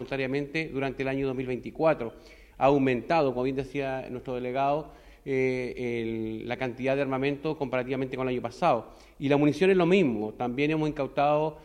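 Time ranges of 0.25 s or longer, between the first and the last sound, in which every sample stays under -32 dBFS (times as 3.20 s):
2.09–2.60 s
4.82–5.27 s
8.80–9.20 s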